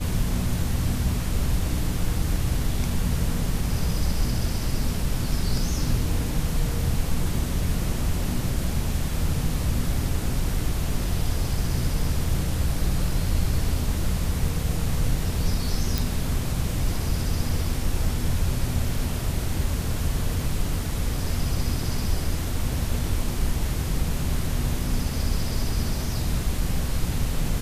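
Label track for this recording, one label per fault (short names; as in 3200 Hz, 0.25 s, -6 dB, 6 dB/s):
15.980000	15.980000	pop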